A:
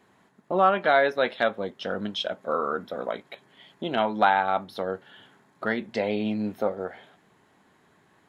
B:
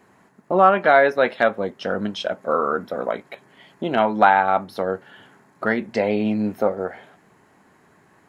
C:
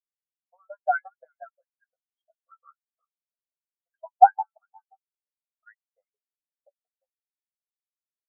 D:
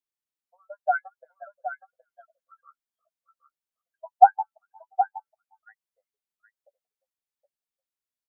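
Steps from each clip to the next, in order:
parametric band 3,500 Hz −9 dB 0.49 octaves; level +6 dB
single-tap delay 394 ms −8 dB; auto-filter high-pass saw up 5.7 Hz 610–4,500 Hz; every bin expanded away from the loudest bin 4 to 1; level −4.5 dB
single-tap delay 769 ms −9.5 dB

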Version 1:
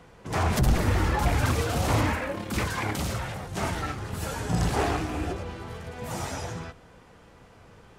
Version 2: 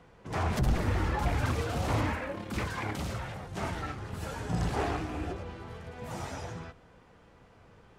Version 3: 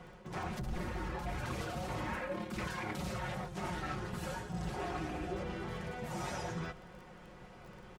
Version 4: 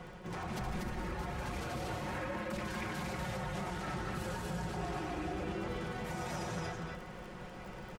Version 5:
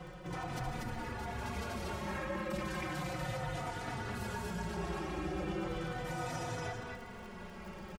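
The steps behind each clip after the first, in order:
high-shelf EQ 6,200 Hz −8.5 dB; level −5 dB
comb filter 5.5 ms, depth 65%; reversed playback; downward compressor 10 to 1, threshold −39 dBFS, peak gain reduction 18.5 dB; reversed playback; surface crackle 20 per second −51 dBFS; level +3.5 dB
brickwall limiter −37 dBFS, peak gain reduction 10.5 dB; on a send: loudspeakers that aren't time-aligned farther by 52 metres −9 dB, 82 metres −2 dB; on the sum: level +4 dB
barber-pole flanger 3.4 ms −0.35 Hz; level +3 dB

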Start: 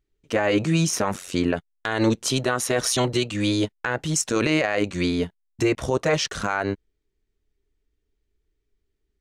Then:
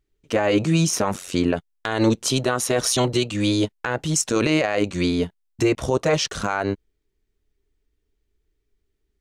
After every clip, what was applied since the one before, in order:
dynamic equaliser 1,800 Hz, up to −4 dB, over −40 dBFS, Q 1.8
level +2 dB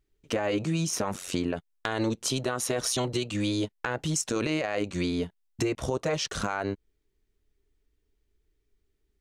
downward compressor 3 to 1, threshold −26 dBFS, peak gain reduction 9.5 dB
level −1 dB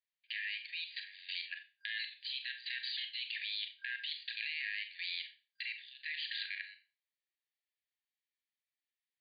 brick-wall band-pass 1,600–4,800 Hz
output level in coarse steps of 15 dB
four-comb reverb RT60 0.31 s, combs from 29 ms, DRR 6 dB
level +4.5 dB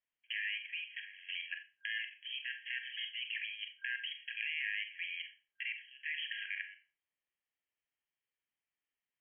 linear-phase brick-wall low-pass 3,300 Hz
level +2 dB

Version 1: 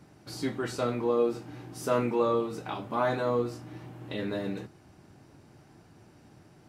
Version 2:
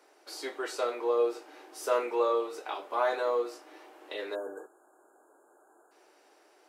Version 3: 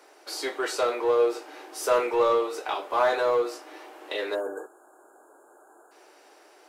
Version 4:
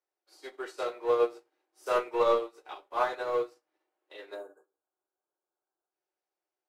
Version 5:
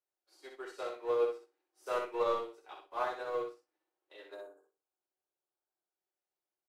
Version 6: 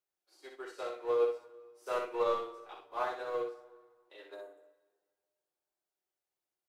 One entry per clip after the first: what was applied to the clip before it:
Butterworth high-pass 380 Hz 36 dB per octave; time-frequency box erased 0:04.35–0:05.91, 1,700–6,600 Hz
low-shelf EQ 170 Hz −8 dB; in parallel at −5 dB: gain into a clipping stage and back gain 32.5 dB; on the sum: level +4 dB
rectangular room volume 490 cubic metres, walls furnished, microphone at 0.97 metres; expander for the loud parts 2.5 to 1, over −44 dBFS; level −1.5 dB
repeating echo 61 ms, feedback 17%, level −5.5 dB; level −7 dB
dense smooth reverb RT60 1.7 s, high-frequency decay 0.75×, DRR 14.5 dB

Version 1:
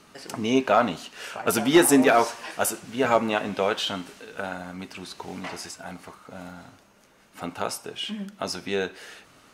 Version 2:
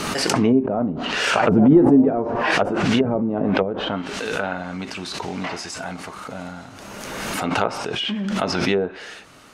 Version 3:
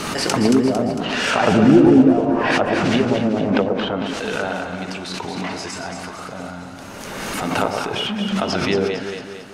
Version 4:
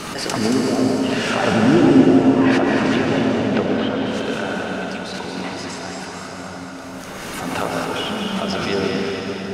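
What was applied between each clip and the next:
treble cut that deepens with the level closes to 330 Hz, closed at −20 dBFS; background raised ahead of every attack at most 25 dB per second; level +6.5 dB
delay that swaps between a low-pass and a high-pass 113 ms, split 940 Hz, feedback 71%, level −3.5 dB
dense smooth reverb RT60 4.4 s, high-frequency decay 0.95×, pre-delay 115 ms, DRR 0 dB; level −3.5 dB

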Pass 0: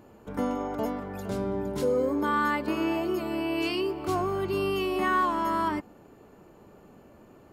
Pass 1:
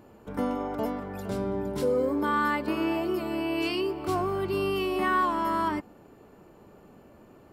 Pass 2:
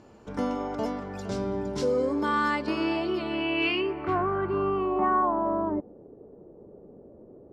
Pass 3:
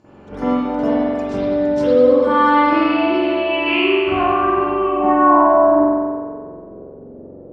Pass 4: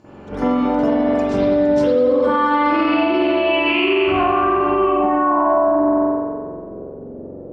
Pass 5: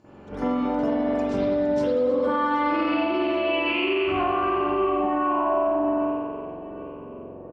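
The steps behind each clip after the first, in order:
notch filter 6,600 Hz, Q 17
low-pass filter sweep 6,000 Hz → 480 Hz, 0:02.57–0:05.92
convolution reverb RT60 1.8 s, pre-delay 44 ms, DRR −15 dB; level −4 dB
brickwall limiter −12.5 dBFS, peak gain reduction 10.5 dB; level +4 dB
repeating echo 778 ms, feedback 46%, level −16.5 dB; level −7 dB

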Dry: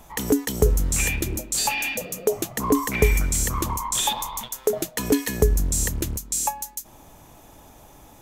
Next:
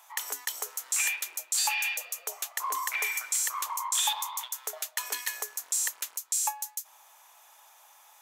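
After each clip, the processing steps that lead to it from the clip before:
high-pass filter 880 Hz 24 dB per octave
level −3 dB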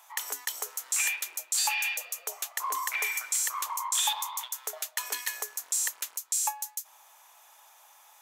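no processing that can be heard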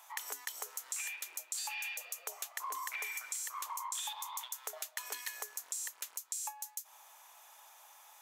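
downward compressor, threshold −36 dBFS, peak gain reduction 12.5 dB
level −1.5 dB

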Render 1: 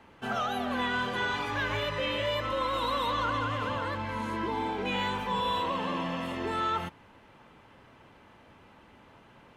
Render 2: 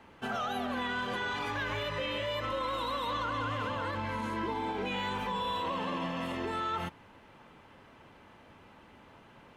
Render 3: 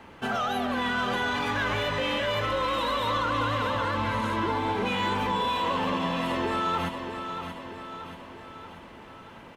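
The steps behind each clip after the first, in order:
brickwall limiter −26 dBFS, peak gain reduction 5.5 dB; mains-hum notches 60/120 Hz
in parallel at −8.5 dB: hard clipping −38.5 dBFS, distortion −7 dB; on the sum: repeating echo 632 ms, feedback 53%, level −8 dB; level +4.5 dB

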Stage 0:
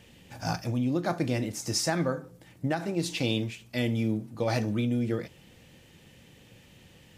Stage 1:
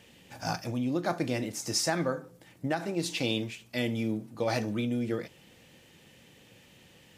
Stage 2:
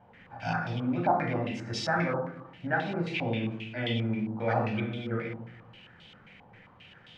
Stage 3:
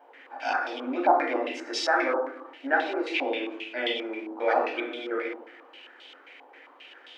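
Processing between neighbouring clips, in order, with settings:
low-shelf EQ 130 Hz −10.5 dB
surface crackle 450 per second −44 dBFS; convolution reverb RT60 0.75 s, pre-delay 11 ms, DRR −1.5 dB; low-pass on a step sequencer 7.5 Hz 920–3,400 Hz; level −6.5 dB
linear-phase brick-wall high-pass 260 Hz; level +5 dB

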